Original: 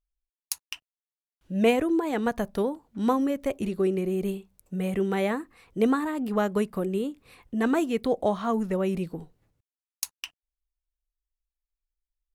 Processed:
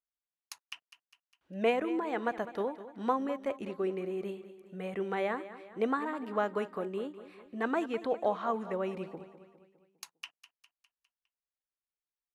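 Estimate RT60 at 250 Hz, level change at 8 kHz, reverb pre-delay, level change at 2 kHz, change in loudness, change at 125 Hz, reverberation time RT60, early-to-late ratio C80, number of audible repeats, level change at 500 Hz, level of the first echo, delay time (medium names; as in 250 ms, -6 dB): no reverb, under -15 dB, no reverb, -4.0 dB, -6.5 dB, -13.0 dB, no reverb, no reverb, 4, -6.0 dB, -14.5 dB, 203 ms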